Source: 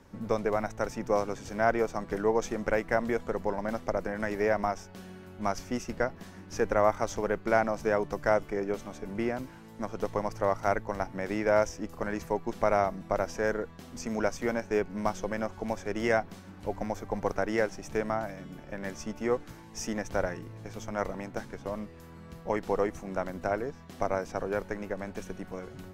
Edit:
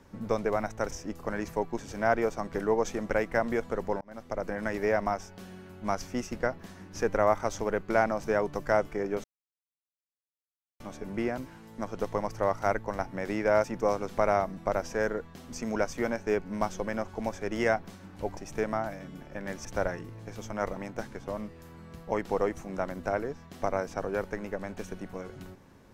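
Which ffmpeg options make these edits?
ffmpeg -i in.wav -filter_complex "[0:a]asplit=9[link_01][link_02][link_03][link_04][link_05][link_06][link_07][link_08][link_09];[link_01]atrim=end=0.912[link_10];[link_02]atrim=start=11.648:end=12.532[link_11];[link_03]atrim=start=1.358:end=3.58,asetpts=PTS-STARTPTS,afade=type=out:start_time=2.218:duration=0.004:curve=hsin[link_12];[link_04]atrim=start=3.58:end=8.81,asetpts=PTS-STARTPTS,afade=type=in:duration=0.51,afade=type=out:start_time=5.226:duration=0.004:curve=hsin,apad=pad_dur=1.56[link_13];[link_05]atrim=start=8.81:end=11.652,asetpts=PTS-STARTPTS,afade=type=in:duration=0.004:curve=hsin[link_14];[link_06]atrim=start=0.908:end=1.362[link_15];[link_07]atrim=start=12.528:end=16.812[link_16];[link_08]atrim=start=17.738:end=19.022[link_17];[link_09]atrim=start=20.028[link_18];[link_10][link_11]acrossfade=duration=0.004:curve1=hsin:curve2=hsin[link_19];[link_12][link_13][link_14]concat=n=3:v=0:a=1[link_20];[link_19][link_20]acrossfade=duration=0.004:curve1=hsin:curve2=hsin[link_21];[link_21][link_15]acrossfade=duration=0.004:curve1=hsin:curve2=hsin[link_22];[link_22][link_16]acrossfade=duration=0.004:curve1=hsin:curve2=hsin[link_23];[link_23][link_17]acrossfade=duration=0.004:curve1=hsin:curve2=hsin[link_24];[link_24][link_18]acrossfade=duration=0.004:curve1=hsin:curve2=hsin" out.wav

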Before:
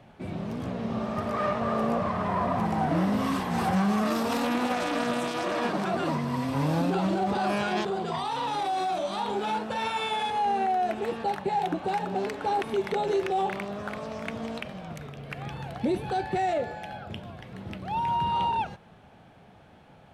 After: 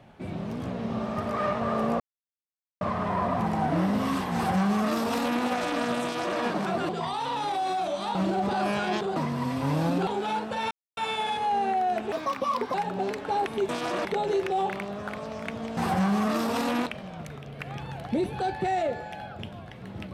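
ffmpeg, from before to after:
ffmpeg -i in.wav -filter_complex "[0:a]asplit=13[link_01][link_02][link_03][link_04][link_05][link_06][link_07][link_08][link_09][link_10][link_11][link_12][link_13];[link_01]atrim=end=2,asetpts=PTS-STARTPTS,afade=type=out:start_time=1.996:duration=0.004:curve=hsin,apad=pad_dur=0.81[link_14];[link_02]atrim=start=2:end=6.082,asetpts=PTS-STARTPTS,afade=type=in:duration=0.004:curve=hsin[link_15];[link_03]atrim=start=7.998:end=9.262[link_16];[link_04]atrim=start=6.988:end=8.002[link_17];[link_05]atrim=start=6.078:end=6.992[link_18];[link_06]atrim=start=9.258:end=9.9,asetpts=PTS-STARTPTS,afade=type=out:start_time=0.638:duration=0.004:curve=hsin,apad=pad_dur=0.26[link_19];[link_07]atrim=start=9.9:end=11.054,asetpts=PTS-STARTPTS,afade=type=in:duration=0.004:curve=hsin[link_20];[link_08]atrim=start=11.05:end=11.9,asetpts=PTS-STARTPTS,asetrate=60417,aresample=44100,atrim=end_sample=27361,asetpts=PTS-STARTPTS[link_21];[link_09]atrim=start=11.896:end=12.852[link_22];[link_10]atrim=start=5.218:end=5.582[link_23];[link_11]atrim=start=12.848:end=14.572[link_24];[link_12]atrim=start=3.528:end=4.622[link_25];[link_13]atrim=start=14.568[link_26];[link_14][link_15]concat=n=2:v=0:a=1[link_27];[link_27][link_16]acrossfade=duration=0.004:curve1=hsin:curve2=hsin[link_28];[link_28][link_17]acrossfade=duration=0.004:curve1=hsin:curve2=hsin[link_29];[link_29][link_18]acrossfade=duration=0.004:curve1=hsin:curve2=hsin[link_30];[link_19][link_20]concat=n=2:v=0:a=1[link_31];[link_30][link_31]acrossfade=duration=0.004:curve1=hsin:curve2=hsin[link_32];[link_32][link_21]acrossfade=duration=0.004:curve1=hsin:curve2=hsin[link_33];[link_33][link_22]acrossfade=duration=0.004:curve1=hsin:curve2=hsin[link_34];[link_34][link_23]acrossfade=duration=0.004:curve1=hsin:curve2=hsin[link_35];[link_35][link_24]acrossfade=duration=0.004:curve1=hsin:curve2=hsin[link_36];[link_36][link_25]acrossfade=duration=0.004:curve1=hsin:curve2=hsin[link_37];[link_37][link_26]acrossfade=duration=0.004:curve1=hsin:curve2=hsin" out.wav

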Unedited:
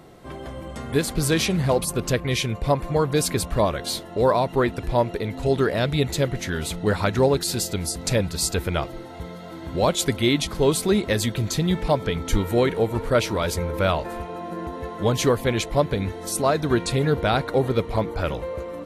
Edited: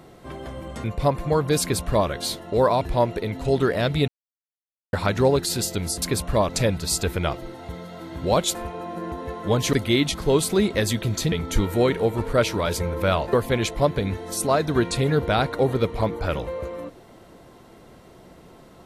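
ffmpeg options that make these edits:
ffmpeg -i in.wav -filter_complex "[0:a]asplit=11[link_01][link_02][link_03][link_04][link_05][link_06][link_07][link_08][link_09][link_10][link_11];[link_01]atrim=end=0.842[link_12];[link_02]atrim=start=2.478:end=4.452[link_13];[link_03]atrim=start=4.788:end=6.06,asetpts=PTS-STARTPTS,afade=type=out:start_time=1.268:duration=0.004:curve=hsin[link_14];[link_04]atrim=start=6.06:end=6.91,asetpts=PTS-STARTPTS,volume=0[link_15];[link_05]atrim=start=6.91:end=8.002,asetpts=PTS-STARTPTS,afade=type=in:duration=0.004:curve=hsin[link_16];[link_06]atrim=start=3.248:end=3.722[link_17];[link_07]atrim=start=7.998:end=10.062[link_18];[link_08]atrim=start=14.098:end=15.282[link_19];[link_09]atrim=start=10.058:end=11.652[link_20];[link_10]atrim=start=12.088:end=14.102[link_21];[link_11]atrim=start=15.278[link_22];[link_12][link_13]acrossfade=duration=0.004:curve1=hsin:curve2=hsin[link_23];[link_14][link_15][link_16]concat=n=3:v=0:a=1[link_24];[link_23][link_24]acrossfade=duration=0.004:curve1=hsin:curve2=hsin[link_25];[link_25][link_17]acrossfade=duration=0.004:curve1=hsin:curve2=hsin[link_26];[link_26][link_18]acrossfade=duration=0.004:curve1=hsin:curve2=hsin[link_27];[link_27][link_19]acrossfade=duration=0.004:curve1=hsin:curve2=hsin[link_28];[link_28][link_20]acrossfade=duration=0.004:curve1=hsin:curve2=hsin[link_29];[link_29][link_21]acrossfade=duration=0.004:curve1=hsin:curve2=hsin[link_30];[link_30][link_22]acrossfade=duration=0.004:curve1=hsin:curve2=hsin" out.wav

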